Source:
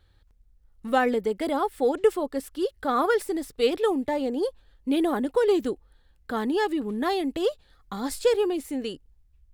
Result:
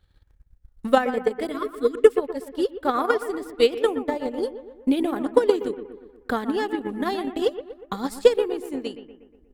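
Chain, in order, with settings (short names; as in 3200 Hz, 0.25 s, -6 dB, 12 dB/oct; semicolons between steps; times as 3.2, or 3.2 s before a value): spectral delete 1.52–2.06, 490–1000 Hz; analogue delay 0.12 s, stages 2048, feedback 55%, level -7 dB; transient shaper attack +11 dB, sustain -6 dB; gain -3 dB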